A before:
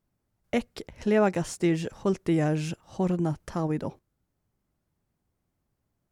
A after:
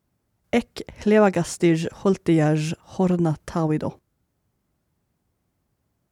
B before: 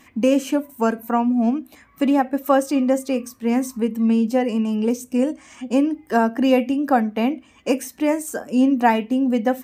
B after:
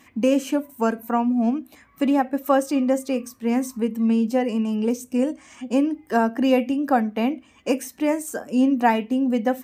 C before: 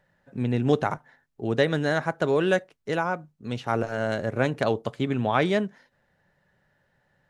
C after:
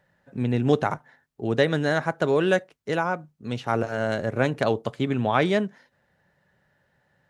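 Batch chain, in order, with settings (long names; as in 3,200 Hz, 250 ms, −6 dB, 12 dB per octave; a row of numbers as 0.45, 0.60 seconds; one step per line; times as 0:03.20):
high-pass filter 42 Hz
normalise the peak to −6 dBFS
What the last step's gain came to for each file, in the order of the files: +6.0, −2.0, +1.0 decibels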